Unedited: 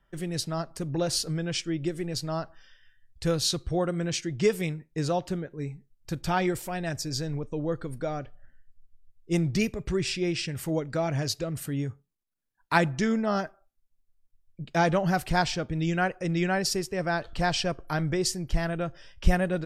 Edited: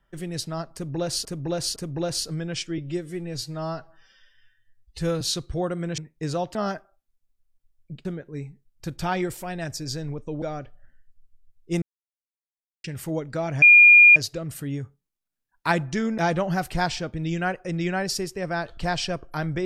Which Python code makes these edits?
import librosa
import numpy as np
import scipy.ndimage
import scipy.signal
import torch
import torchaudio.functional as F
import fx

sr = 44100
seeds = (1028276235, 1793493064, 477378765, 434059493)

y = fx.edit(x, sr, fx.repeat(start_s=0.74, length_s=0.51, count=3),
    fx.stretch_span(start_s=1.76, length_s=1.62, factor=1.5),
    fx.cut(start_s=4.15, length_s=0.58),
    fx.cut(start_s=7.67, length_s=0.35),
    fx.silence(start_s=9.42, length_s=1.02),
    fx.insert_tone(at_s=11.22, length_s=0.54, hz=2420.0, db=-8.0),
    fx.move(start_s=13.24, length_s=1.5, to_s=5.3), tone=tone)